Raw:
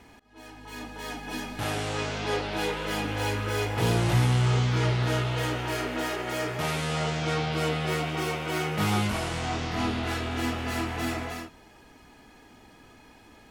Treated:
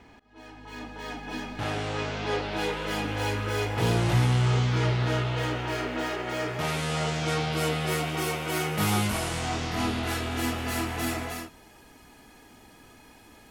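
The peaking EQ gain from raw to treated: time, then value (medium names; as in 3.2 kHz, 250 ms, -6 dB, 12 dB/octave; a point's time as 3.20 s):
peaking EQ 12 kHz 1.2 oct
2.13 s -13.5 dB
2.75 s -3 dB
4.70 s -3 dB
5.17 s -9.5 dB
6.37 s -9.5 dB
6.79 s +1 dB
7.28 s +9 dB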